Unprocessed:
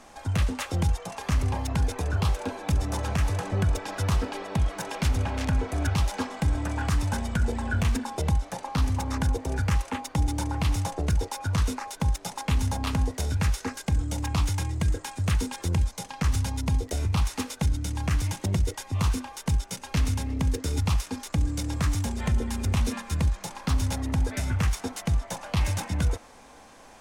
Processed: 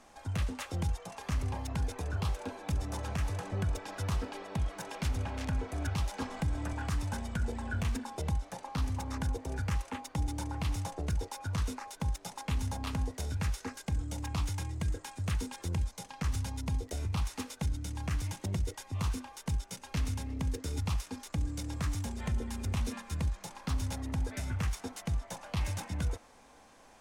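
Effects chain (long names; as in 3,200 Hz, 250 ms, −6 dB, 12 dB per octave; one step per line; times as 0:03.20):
0:06.22–0:06.73: multiband upward and downward compressor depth 70%
level −8 dB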